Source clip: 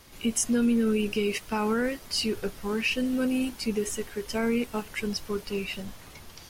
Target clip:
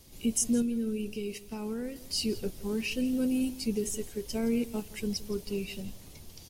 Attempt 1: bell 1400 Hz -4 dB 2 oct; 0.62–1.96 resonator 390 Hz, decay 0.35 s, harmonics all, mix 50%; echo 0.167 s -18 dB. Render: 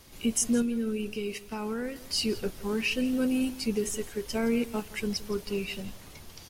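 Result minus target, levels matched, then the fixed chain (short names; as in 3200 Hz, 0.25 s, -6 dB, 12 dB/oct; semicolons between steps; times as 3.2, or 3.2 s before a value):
1000 Hz band +6.0 dB
bell 1400 Hz -15 dB 2 oct; 0.62–1.96 resonator 390 Hz, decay 0.35 s, harmonics all, mix 50%; echo 0.167 s -18 dB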